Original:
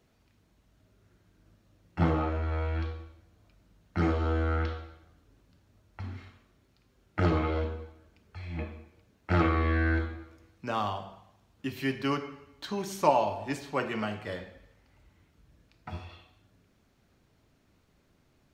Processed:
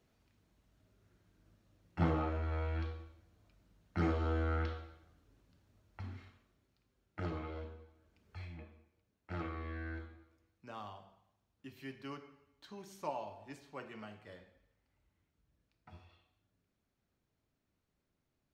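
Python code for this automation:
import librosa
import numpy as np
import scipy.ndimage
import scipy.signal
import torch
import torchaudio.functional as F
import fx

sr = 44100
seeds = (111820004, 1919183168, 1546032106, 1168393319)

y = fx.gain(x, sr, db=fx.line((6.0, -6.0), (7.33, -14.5), (7.85, -14.5), (8.42, -4.0), (8.6, -16.5)))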